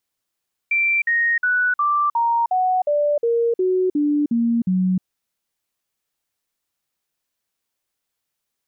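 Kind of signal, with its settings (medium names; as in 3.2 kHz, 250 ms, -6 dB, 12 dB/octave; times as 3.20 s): stepped sine 2.35 kHz down, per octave 3, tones 12, 0.31 s, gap 0.05 s -15.5 dBFS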